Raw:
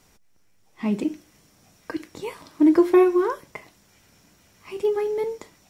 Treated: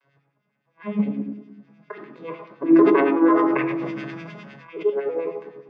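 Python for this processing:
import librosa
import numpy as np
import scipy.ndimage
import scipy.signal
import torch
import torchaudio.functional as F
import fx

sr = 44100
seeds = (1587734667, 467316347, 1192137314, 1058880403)

y = fx.vocoder_arp(x, sr, chord='minor triad', root=49, every_ms=164)
y = scipy.signal.sosfilt(scipy.signal.butter(2, 3600.0, 'lowpass', fs=sr, output='sos'), y)
y = fx.peak_eq(y, sr, hz=160.0, db=3.0, octaves=0.66)
y = fx.room_shoebox(y, sr, seeds[0], volume_m3=2900.0, walls='furnished', distance_m=5.2)
y = fx.filter_lfo_bandpass(y, sr, shape='sine', hz=9.8, low_hz=980.0, high_hz=2400.0, q=1.0)
y = fx.sustainer(y, sr, db_per_s=23.0, at=(2.63, 4.9))
y = y * 10.0 ** (5.0 / 20.0)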